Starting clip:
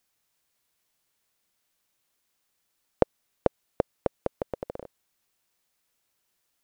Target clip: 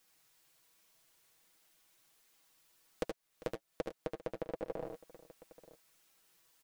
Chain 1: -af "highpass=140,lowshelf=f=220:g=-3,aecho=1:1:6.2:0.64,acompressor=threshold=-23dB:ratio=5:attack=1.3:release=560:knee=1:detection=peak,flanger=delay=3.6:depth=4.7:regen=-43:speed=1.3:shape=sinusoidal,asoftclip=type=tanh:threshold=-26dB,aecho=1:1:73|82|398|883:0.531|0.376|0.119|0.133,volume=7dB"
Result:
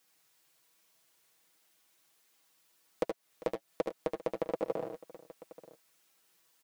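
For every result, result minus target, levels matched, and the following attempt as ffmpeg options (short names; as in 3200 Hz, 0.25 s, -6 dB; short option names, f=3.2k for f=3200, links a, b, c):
compressor: peak gain reduction -7.5 dB; 125 Hz band -5.5 dB
-af "highpass=140,lowshelf=f=220:g=-3,aecho=1:1:6.2:0.64,acompressor=threshold=-32.5dB:ratio=5:attack=1.3:release=560:knee=1:detection=peak,flanger=delay=3.6:depth=4.7:regen=-43:speed=1.3:shape=sinusoidal,asoftclip=type=tanh:threshold=-26dB,aecho=1:1:73|82|398|883:0.531|0.376|0.119|0.133,volume=7dB"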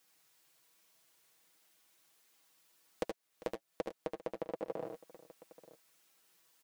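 125 Hz band -4.5 dB
-af "lowshelf=f=220:g=-3,aecho=1:1:6.2:0.64,acompressor=threshold=-32.5dB:ratio=5:attack=1.3:release=560:knee=1:detection=peak,flanger=delay=3.6:depth=4.7:regen=-43:speed=1.3:shape=sinusoidal,asoftclip=type=tanh:threshold=-26dB,aecho=1:1:73|82|398|883:0.531|0.376|0.119|0.133,volume=7dB"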